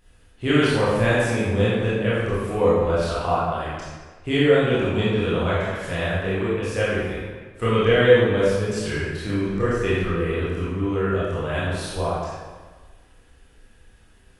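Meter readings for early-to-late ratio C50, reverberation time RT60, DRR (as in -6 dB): -3.0 dB, 1.4 s, -9.5 dB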